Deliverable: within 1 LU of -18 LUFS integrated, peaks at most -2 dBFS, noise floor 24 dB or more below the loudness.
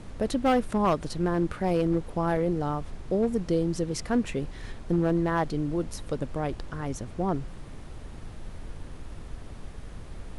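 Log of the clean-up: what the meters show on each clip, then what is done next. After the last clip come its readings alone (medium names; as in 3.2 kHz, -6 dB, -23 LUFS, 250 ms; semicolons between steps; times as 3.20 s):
clipped samples 0.7%; clipping level -17.5 dBFS; noise floor -42 dBFS; noise floor target -53 dBFS; loudness -28.5 LUFS; peak level -17.5 dBFS; loudness target -18.0 LUFS
-> clip repair -17.5 dBFS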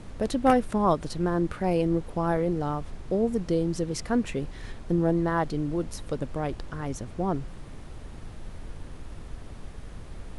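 clipped samples 0.0%; noise floor -42 dBFS; noise floor target -52 dBFS
-> noise print and reduce 10 dB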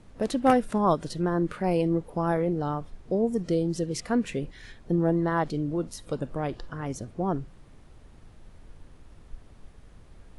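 noise floor -52 dBFS; loudness -28.0 LUFS; peak level -8.5 dBFS; loudness target -18.0 LUFS
-> trim +10 dB; peak limiter -2 dBFS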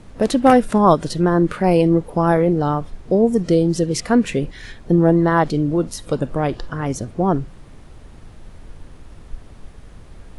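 loudness -18.0 LUFS; peak level -2.0 dBFS; noise floor -42 dBFS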